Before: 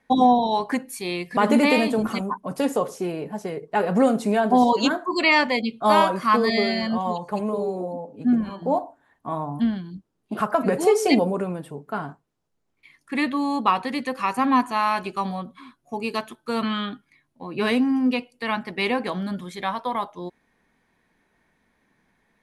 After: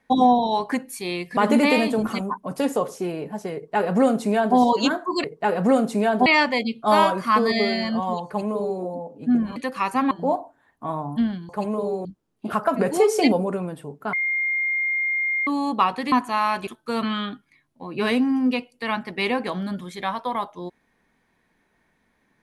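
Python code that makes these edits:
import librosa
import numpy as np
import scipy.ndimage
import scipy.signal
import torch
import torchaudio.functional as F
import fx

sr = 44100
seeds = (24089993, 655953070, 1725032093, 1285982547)

y = fx.edit(x, sr, fx.duplicate(start_s=3.55, length_s=1.02, to_s=5.24),
    fx.duplicate(start_s=7.24, length_s=0.56, to_s=9.92),
    fx.bleep(start_s=12.0, length_s=1.34, hz=2120.0, db=-20.5),
    fx.move(start_s=13.99, length_s=0.55, to_s=8.54),
    fx.cut(start_s=15.09, length_s=1.18), tone=tone)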